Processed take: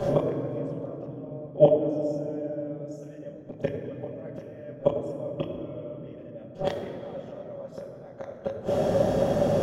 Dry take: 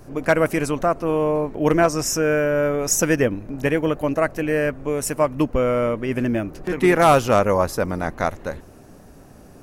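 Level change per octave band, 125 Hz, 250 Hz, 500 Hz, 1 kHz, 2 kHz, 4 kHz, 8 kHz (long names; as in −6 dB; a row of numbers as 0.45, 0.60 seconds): −7.0 dB, −10.0 dB, −6.5 dB, −14.5 dB, −22.5 dB, −13.5 dB, below −25 dB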